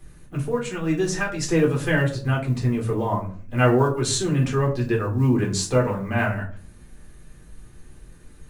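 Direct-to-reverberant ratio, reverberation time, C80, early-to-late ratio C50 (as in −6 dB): −2.0 dB, 0.45 s, 15.5 dB, 11.0 dB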